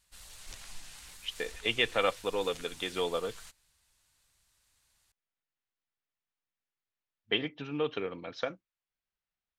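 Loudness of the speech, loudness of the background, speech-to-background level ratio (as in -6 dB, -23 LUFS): -33.5 LUFS, -48.5 LUFS, 15.0 dB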